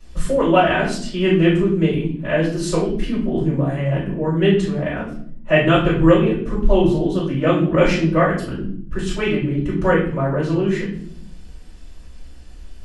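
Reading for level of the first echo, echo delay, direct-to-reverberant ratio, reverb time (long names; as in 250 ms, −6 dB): no echo audible, no echo audible, −11.0 dB, 0.60 s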